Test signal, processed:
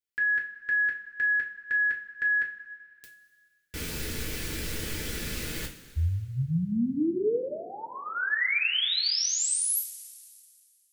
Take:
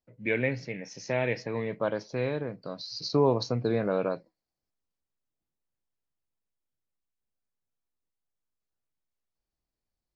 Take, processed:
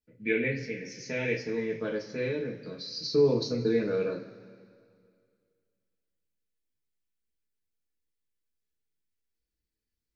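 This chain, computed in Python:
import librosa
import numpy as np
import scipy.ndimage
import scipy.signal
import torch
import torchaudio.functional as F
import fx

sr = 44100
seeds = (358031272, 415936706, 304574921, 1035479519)

y = fx.band_shelf(x, sr, hz=840.0, db=-12.5, octaves=1.2)
y = fx.rev_double_slope(y, sr, seeds[0], early_s=0.28, late_s=2.2, knee_db=-18, drr_db=-2.5)
y = y * librosa.db_to_amplitude(-4.0)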